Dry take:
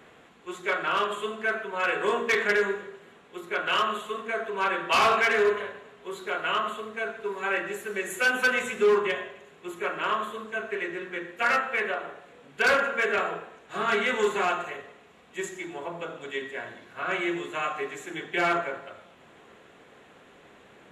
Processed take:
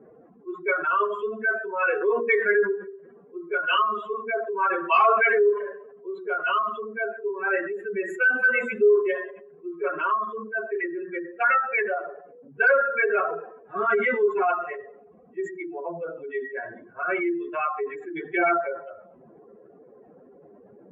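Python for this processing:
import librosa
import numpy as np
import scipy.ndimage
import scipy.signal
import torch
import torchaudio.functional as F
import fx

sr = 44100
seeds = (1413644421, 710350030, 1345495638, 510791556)

y = fx.spec_expand(x, sr, power=2.5)
y = fx.env_lowpass(y, sr, base_hz=620.0, full_db=-26.0)
y = F.gain(torch.from_numpy(y), 3.5).numpy()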